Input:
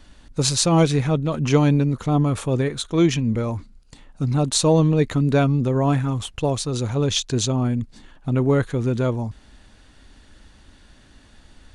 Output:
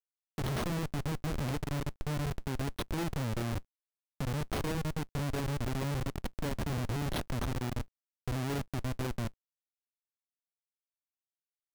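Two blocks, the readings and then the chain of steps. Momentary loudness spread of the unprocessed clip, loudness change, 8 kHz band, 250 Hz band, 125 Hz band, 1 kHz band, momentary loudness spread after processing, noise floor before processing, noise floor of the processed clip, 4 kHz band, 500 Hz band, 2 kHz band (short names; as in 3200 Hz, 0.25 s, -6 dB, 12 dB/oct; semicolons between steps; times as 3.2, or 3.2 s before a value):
9 LU, -15.5 dB, -19.5 dB, -16.5 dB, -14.0 dB, -12.5 dB, 5 LU, -51 dBFS, under -85 dBFS, -16.5 dB, -17.5 dB, -8.5 dB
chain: bell 5100 Hz -5 dB 0.21 oct; compressor 12:1, threshold -27 dBFS, peak gain reduction 16.5 dB; careless resampling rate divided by 6×, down none, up hold; Schmitt trigger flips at -29.5 dBFS; companded quantiser 6-bit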